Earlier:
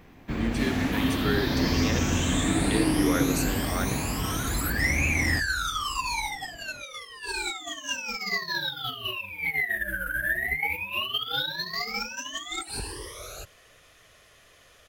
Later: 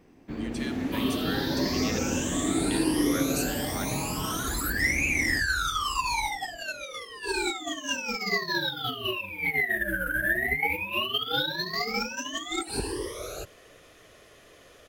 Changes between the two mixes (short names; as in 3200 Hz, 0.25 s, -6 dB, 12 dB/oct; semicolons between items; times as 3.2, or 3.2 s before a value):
speech: add passive tone stack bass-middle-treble 10-0-10; first sound -11.0 dB; master: add bell 340 Hz +10.5 dB 1.8 oct